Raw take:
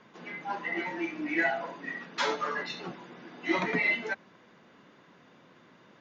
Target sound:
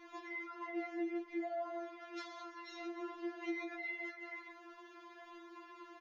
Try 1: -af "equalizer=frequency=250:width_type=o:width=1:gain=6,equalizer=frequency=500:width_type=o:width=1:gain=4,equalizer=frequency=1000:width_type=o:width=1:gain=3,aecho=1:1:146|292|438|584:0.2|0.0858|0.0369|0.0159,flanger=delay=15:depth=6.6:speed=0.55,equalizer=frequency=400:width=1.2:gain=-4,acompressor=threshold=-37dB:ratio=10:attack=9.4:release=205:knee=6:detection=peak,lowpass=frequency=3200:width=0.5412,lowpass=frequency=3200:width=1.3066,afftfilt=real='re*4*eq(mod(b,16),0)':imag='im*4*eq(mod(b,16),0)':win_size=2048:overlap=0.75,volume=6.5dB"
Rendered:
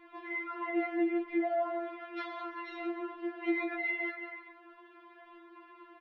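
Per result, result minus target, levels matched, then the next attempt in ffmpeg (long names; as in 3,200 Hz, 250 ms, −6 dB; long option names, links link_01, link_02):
downward compressor: peak gain reduction −9 dB; 4,000 Hz band −7.0 dB
-af "equalizer=frequency=250:width_type=o:width=1:gain=6,equalizer=frequency=500:width_type=o:width=1:gain=4,equalizer=frequency=1000:width_type=o:width=1:gain=3,aecho=1:1:146|292|438|584:0.2|0.0858|0.0369|0.0159,flanger=delay=15:depth=6.6:speed=0.55,equalizer=frequency=400:width=1.2:gain=-4,acompressor=threshold=-47dB:ratio=10:attack=9.4:release=205:knee=6:detection=peak,lowpass=frequency=3200:width=0.5412,lowpass=frequency=3200:width=1.3066,afftfilt=real='re*4*eq(mod(b,16),0)':imag='im*4*eq(mod(b,16),0)':win_size=2048:overlap=0.75,volume=6.5dB"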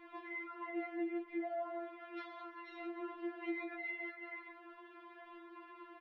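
4,000 Hz band −5.5 dB
-af "equalizer=frequency=250:width_type=o:width=1:gain=6,equalizer=frequency=500:width_type=o:width=1:gain=4,equalizer=frequency=1000:width_type=o:width=1:gain=3,aecho=1:1:146|292|438|584:0.2|0.0858|0.0369|0.0159,flanger=delay=15:depth=6.6:speed=0.55,equalizer=frequency=400:width=1.2:gain=-4,acompressor=threshold=-47dB:ratio=10:attack=9.4:release=205:knee=6:detection=peak,afftfilt=real='re*4*eq(mod(b,16),0)':imag='im*4*eq(mod(b,16),0)':win_size=2048:overlap=0.75,volume=6.5dB"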